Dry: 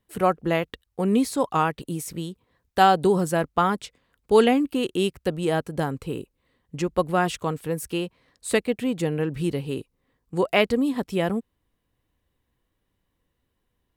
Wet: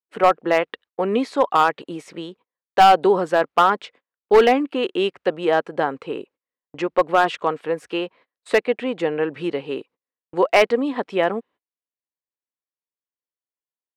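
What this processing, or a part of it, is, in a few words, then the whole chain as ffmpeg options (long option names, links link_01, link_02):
walkie-talkie: -af "highpass=440,lowpass=2600,asoftclip=type=hard:threshold=-15dB,agate=range=-32dB:threshold=-55dB:ratio=16:detection=peak,volume=8dB"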